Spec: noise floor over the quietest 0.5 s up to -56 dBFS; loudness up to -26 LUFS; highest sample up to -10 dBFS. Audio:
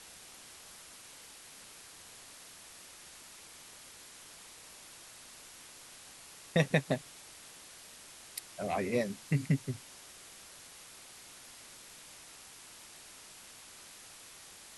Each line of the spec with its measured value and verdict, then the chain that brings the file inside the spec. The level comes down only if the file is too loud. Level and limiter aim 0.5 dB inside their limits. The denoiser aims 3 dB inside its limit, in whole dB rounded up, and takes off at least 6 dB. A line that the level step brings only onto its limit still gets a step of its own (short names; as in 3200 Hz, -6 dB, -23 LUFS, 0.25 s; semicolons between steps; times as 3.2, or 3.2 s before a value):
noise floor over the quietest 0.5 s -53 dBFS: fail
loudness -41.0 LUFS: OK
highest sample -13.0 dBFS: OK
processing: denoiser 6 dB, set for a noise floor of -53 dBFS